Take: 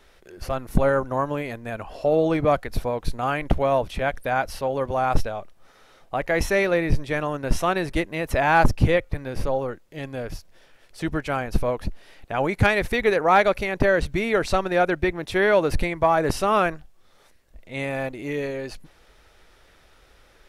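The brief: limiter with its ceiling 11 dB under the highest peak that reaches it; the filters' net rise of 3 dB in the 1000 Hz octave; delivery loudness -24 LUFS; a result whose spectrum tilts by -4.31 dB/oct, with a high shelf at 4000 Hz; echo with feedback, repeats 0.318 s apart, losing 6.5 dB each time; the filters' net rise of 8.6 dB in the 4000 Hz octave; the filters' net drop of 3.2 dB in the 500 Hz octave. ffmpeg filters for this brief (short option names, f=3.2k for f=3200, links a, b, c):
-af "equalizer=f=500:t=o:g=-6,equalizer=f=1k:t=o:g=5.5,highshelf=f=4k:g=3.5,equalizer=f=4k:t=o:g=8.5,alimiter=limit=-12dB:level=0:latency=1,aecho=1:1:318|636|954|1272|1590|1908:0.473|0.222|0.105|0.0491|0.0231|0.0109"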